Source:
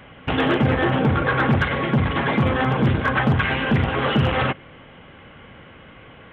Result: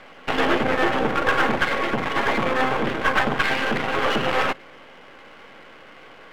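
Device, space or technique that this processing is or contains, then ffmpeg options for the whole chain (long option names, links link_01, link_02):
crystal radio: -af "highpass=350,lowpass=3300,aeval=exprs='if(lt(val(0),0),0.251*val(0),val(0))':channel_layout=same,volume=5dB"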